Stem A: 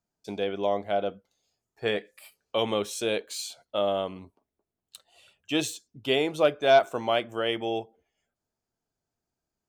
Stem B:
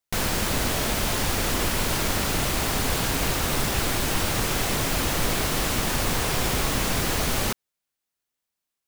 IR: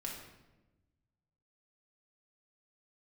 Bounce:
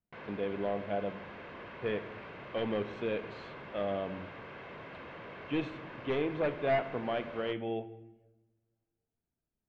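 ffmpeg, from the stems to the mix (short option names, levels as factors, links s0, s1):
-filter_complex "[0:a]equalizer=f=1100:t=o:w=2.9:g=-9.5,aeval=exprs='0.0708*(abs(mod(val(0)/0.0708+3,4)-2)-1)':c=same,volume=0.75,asplit=2[s0][s1];[s1]volume=0.447[s2];[1:a]highpass=170,aecho=1:1:1.9:0.35,asoftclip=type=hard:threshold=0.0501,volume=0.178[s3];[2:a]atrim=start_sample=2205[s4];[s2][s4]afir=irnorm=-1:irlink=0[s5];[s0][s3][s5]amix=inputs=3:normalize=0,lowpass=f=2500:w=0.5412,lowpass=f=2500:w=1.3066"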